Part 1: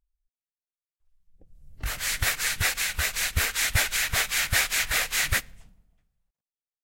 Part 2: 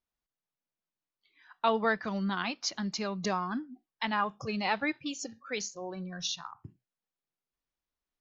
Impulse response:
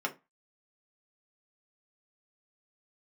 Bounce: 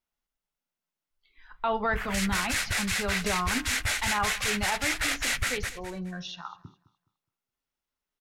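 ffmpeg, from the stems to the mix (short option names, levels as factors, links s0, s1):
-filter_complex "[0:a]afwtdn=0.0178,acompressor=threshold=0.0112:ratio=1.5,adelay=100,volume=1.26,asplit=3[s0][s1][s2];[s1]volume=0.178[s3];[s2]volume=0.631[s4];[1:a]acrossover=split=3200[s5][s6];[s6]acompressor=threshold=0.00282:ratio=4:attack=1:release=60[s7];[s5][s7]amix=inputs=2:normalize=0,volume=1,asplit=3[s8][s9][s10];[s9]volume=0.316[s11];[s10]volume=0.119[s12];[2:a]atrim=start_sample=2205[s13];[s3][s11]amix=inputs=2:normalize=0[s14];[s14][s13]afir=irnorm=-1:irlink=0[s15];[s4][s12]amix=inputs=2:normalize=0,aecho=0:1:209|418|627|836:1|0.27|0.0729|0.0197[s16];[s0][s8][s15][s16]amix=inputs=4:normalize=0,alimiter=limit=0.133:level=0:latency=1:release=10"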